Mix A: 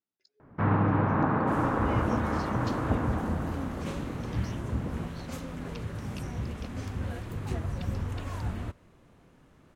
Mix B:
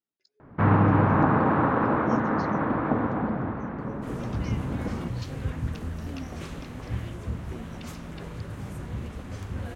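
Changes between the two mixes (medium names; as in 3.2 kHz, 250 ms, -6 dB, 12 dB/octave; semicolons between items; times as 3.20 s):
first sound +5.0 dB; second sound: entry +2.55 s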